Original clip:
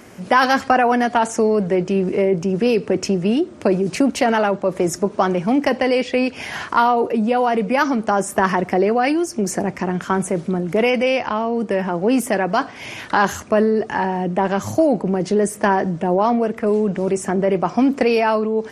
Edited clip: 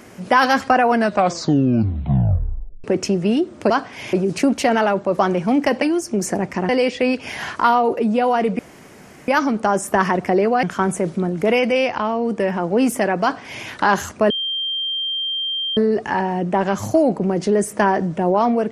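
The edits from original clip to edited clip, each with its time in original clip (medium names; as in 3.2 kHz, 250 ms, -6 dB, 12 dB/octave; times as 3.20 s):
0.87 s: tape stop 1.97 s
4.76–5.19 s: delete
7.72 s: insert room tone 0.69 s
9.07–9.94 s: move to 5.82 s
12.53–12.96 s: copy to 3.70 s
13.61 s: add tone 3.17 kHz -20.5 dBFS 1.47 s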